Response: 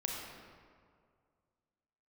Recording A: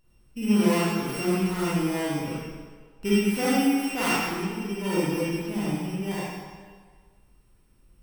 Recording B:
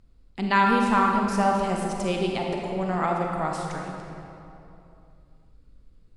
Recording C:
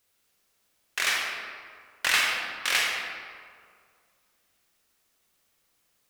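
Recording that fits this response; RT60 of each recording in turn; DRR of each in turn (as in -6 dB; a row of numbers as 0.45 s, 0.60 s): C; 1.6 s, 2.9 s, 2.1 s; -8.5 dB, 0.0 dB, -1.0 dB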